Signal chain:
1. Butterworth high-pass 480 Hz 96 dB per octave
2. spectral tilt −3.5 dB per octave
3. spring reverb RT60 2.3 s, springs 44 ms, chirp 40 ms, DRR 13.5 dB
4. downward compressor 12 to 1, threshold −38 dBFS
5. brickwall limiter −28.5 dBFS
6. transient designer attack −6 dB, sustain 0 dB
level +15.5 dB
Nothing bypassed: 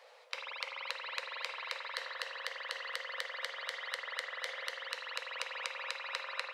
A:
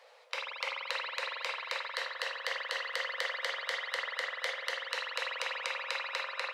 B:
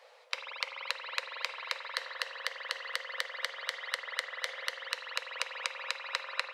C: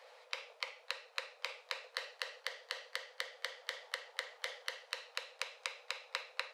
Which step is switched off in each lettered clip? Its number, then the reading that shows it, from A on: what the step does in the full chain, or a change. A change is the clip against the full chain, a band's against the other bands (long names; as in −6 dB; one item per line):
4, average gain reduction 5.0 dB
6, change in crest factor +3.0 dB
3, change in momentary loudness spread +2 LU